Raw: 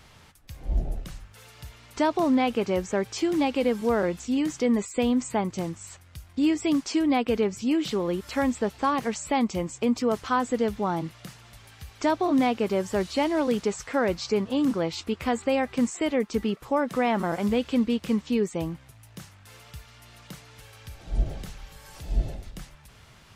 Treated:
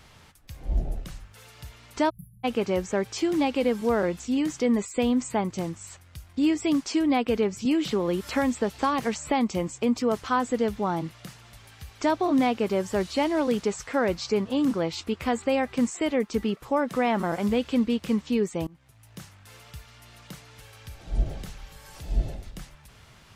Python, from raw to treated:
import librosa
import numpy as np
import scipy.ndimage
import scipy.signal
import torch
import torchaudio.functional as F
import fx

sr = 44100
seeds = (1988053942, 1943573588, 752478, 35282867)

y = fx.spec_erase(x, sr, start_s=2.1, length_s=0.34, low_hz=210.0, high_hz=9900.0)
y = fx.band_squash(y, sr, depth_pct=70, at=(7.65, 9.68))
y = fx.edit(y, sr, fx.fade_in_from(start_s=18.67, length_s=0.52, floor_db=-24.0), tone=tone)